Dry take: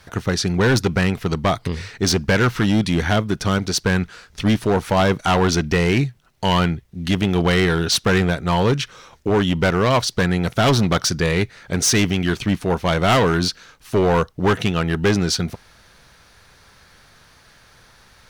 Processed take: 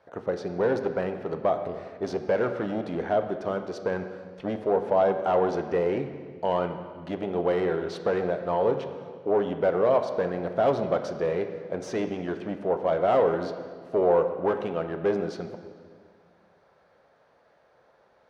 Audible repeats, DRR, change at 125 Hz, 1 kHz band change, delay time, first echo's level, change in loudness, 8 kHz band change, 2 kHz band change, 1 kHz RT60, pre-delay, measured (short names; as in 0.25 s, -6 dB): none, 7.0 dB, -18.5 dB, -6.5 dB, none, none, -8.0 dB, under -25 dB, -15.5 dB, 1.7 s, 8 ms